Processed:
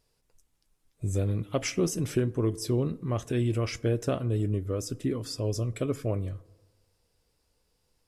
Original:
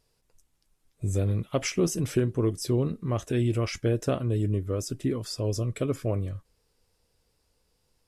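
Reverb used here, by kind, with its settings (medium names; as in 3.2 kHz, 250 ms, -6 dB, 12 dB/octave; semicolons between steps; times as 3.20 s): FDN reverb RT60 1.3 s, low-frequency decay 0.9×, high-frequency decay 0.35×, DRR 19 dB; trim -1.5 dB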